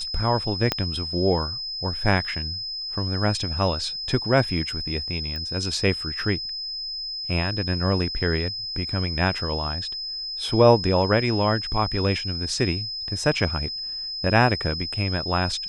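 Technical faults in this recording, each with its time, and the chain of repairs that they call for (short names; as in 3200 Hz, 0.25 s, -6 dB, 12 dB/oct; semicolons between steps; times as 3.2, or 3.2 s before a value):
tone 5100 Hz -29 dBFS
0.72 pop -7 dBFS
5.36 pop -21 dBFS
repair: de-click; notch 5100 Hz, Q 30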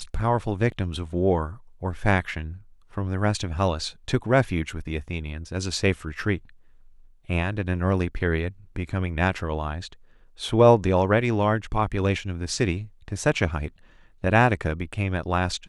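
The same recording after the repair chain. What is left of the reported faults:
0.72 pop
5.36 pop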